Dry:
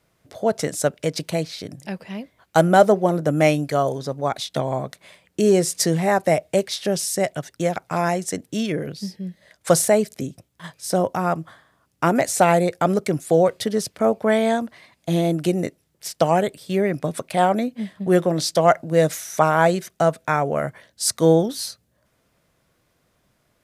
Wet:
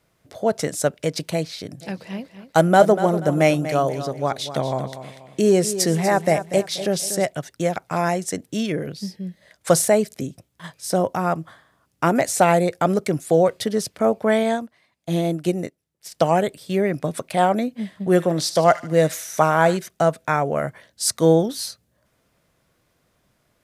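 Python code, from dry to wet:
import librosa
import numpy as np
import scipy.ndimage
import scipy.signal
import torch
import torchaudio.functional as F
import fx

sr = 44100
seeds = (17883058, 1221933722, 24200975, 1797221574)

y = fx.echo_feedback(x, sr, ms=241, feedback_pct=36, wet_db=-12.0, at=(1.8, 7.24), fade=0.02)
y = fx.upward_expand(y, sr, threshold_db=-42.0, expansion=1.5, at=(14.43, 16.12))
y = fx.echo_wet_highpass(y, sr, ms=75, feedback_pct=48, hz=1600.0, wet_db=-11.5, at=(17.85, 19.77))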